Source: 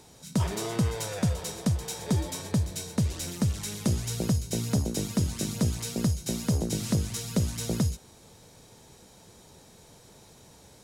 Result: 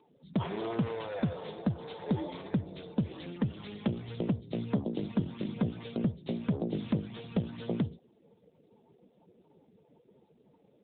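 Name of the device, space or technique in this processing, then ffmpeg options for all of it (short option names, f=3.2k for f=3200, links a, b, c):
mobile call with aggressive noise cancelling: -af "highpass=180,afftdn=nr=23:nf=-48" -ar 8000 -c:a libopencore_amrnb -b:a 7950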